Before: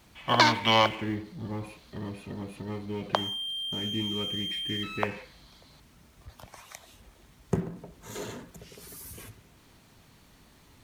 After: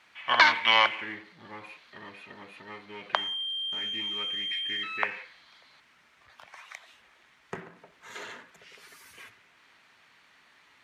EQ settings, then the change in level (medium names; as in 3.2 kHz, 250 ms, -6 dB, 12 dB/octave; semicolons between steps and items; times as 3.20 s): band-pass filter 1.9 kHz, Q 1.4; +6.5 dB